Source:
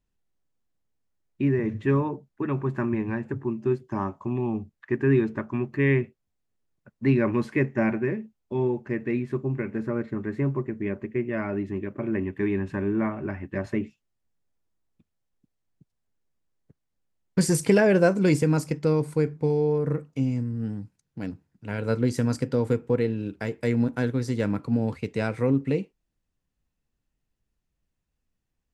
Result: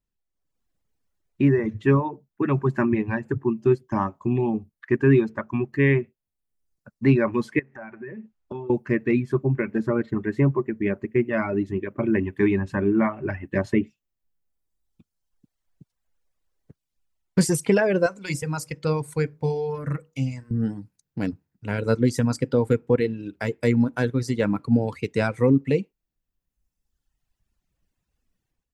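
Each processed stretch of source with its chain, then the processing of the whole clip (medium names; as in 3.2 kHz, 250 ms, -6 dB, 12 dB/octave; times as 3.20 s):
7.59–8.70 s: low-pass 8.3 kHz + compression 10:1, threshold -37 dBFS + peaking EQ 1.3 kHz +6.5 dB 2 oct
18.06–20.51 s: peaking EQ 300 Hz -11 dB 1.8 oct + hum notches 60/120/180/240/300/360/420/480/540/600 Hz
whole clip: reverb removal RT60 1.5 s; level rider gain up to 13 dB; trim -5.5 dB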